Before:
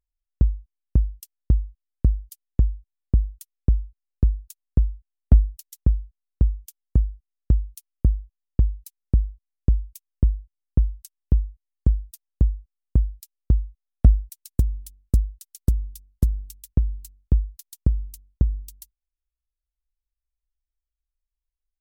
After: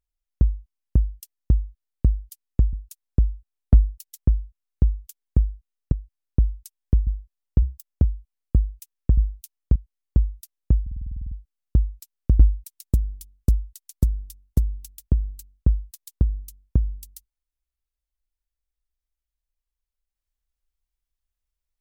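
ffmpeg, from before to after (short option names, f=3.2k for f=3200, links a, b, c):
-filter_complex "[0:a]asplit=19[a][b][c][d][e][f][g][h][i][j][k][l][m][n][o][p][q][r][s];[a]atrim=end=2.732[t];[b]atrim=start=4.318:end=7.512[u];[c]atrim=start=10.308:end=11.462[v];[d]atrim=start=8.088:end=8.644[w];[e]atrim=start=8.64:end=9.18,asetpts=PTS-STARTPTS,asetrate=56007,aresample=44100,atrim=end_sample=18751,asetpts=PTS-STARTPTS[x];[f]atrim=start=9.176:end=10.312[y];[g]atrim=start=7.508:end=8.092[z];[h]atrim=start=11.458:end=12.572[aa];[i]atrim=start=12.518:end=12.572[ab];[j]atrim=start=12.518:end=12.572[ac];[k]atrim=start=12.518:end=12.572[ad];[l]atrim=start=12.518:end=12.572[ae];[m]atrim=start=12.518:end=12.572[af];[n]atrim=start=12.518:end=12.572[ag];[o]atrim=start=12.518:end=12.572[ah];[p]atrim=start=12.518:end=12.572[ai];[q]atrim=start=12.518:end=12.572[aj];[r]atrim=start=12.518:end=13.602[ak];[s]atrim=start=14.048[al];[t][u]acrossfade=d=0.004:c1=hsin:c2=hsin[am];[am][v]acrossfade=d=0.004:c1=hsin:c2=hsin[an];[an][w]acrossfade=d=0.004:c1=hsin:c2=hsin[ao];[ao][x]acrossfade=d=0.004:c1=hsin:c2=hsin[ap];[ap][y]acrossfade=d=0.004:c1=hsin:c2=hsin[aq];[aq][z]acrossfade=d=0.004:c1=hsin:c2=hsin[ar];[ar][aa]acrossfade=d=0.004:c1=hsin:c2=hsin[as];[as][ab]acrossfade=d=0.004:c1=hsin:c2=hsin[at];[at][ac]acrossfade=d=0.004:c1=hsin:c2=hsin[au];[au][ad]acrossfade=d=0.004:c1=hsin:c2=hsin[av];[av][ae]acrossfade=d=0.004:c1=hsin:c2=hsin[aw];[aw][af]acrossfade=d=0.004:c1=hsin:c2=hsin[ax];[ax][ag]acrossfade=d=0.004:c1=hsin:c2=hsin[ay];[ay][ah]acrossfade=d=0.004:c1=hsin:c2=hsin[az];[az][ai]acrossfade=d=0.004:c1=hsin:c2=hsin[ba];[ba][aj]acrossfade=d=0.004:c1=hsin:c2=hsin[bb];[bb][ak]acrossfade=d=0.004:c1=hsin:c2=hsin[bc];[bc][al]acrossfade=d=0.004:c1=hsin:c2=hsin"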